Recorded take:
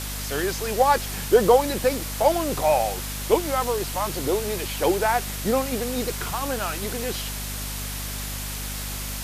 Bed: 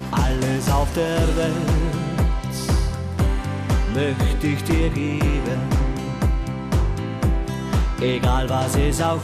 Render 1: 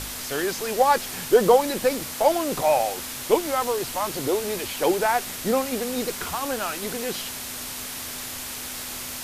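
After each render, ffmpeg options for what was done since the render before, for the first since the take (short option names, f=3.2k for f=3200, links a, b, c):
-af "bandreject=f=50:t=h:w=4,bandreject=f=100:t=h:w=4,bandreject=f=150:t=h:w=4,bandreject=f=200:t=h:w=4"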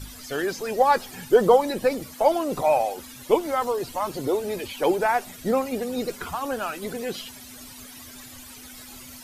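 -af "afftdn=nr=15:nf=-34"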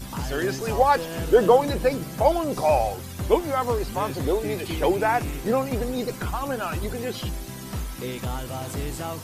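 -filter_complex "[1:a]volume=-11.5dB[a];[0:a][a]amix=inputs=2:normalize=0"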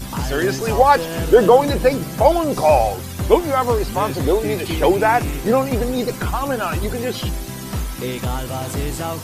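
-af "volume=6.5dB,alimiter=limit=-1dB:level=0:latency=1"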